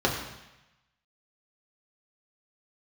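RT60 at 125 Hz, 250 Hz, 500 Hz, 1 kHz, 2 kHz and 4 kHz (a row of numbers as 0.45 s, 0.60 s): 1.1 s, 0.90 s, 0.90 s, 1.0 s, 1.1 s, 1.0 s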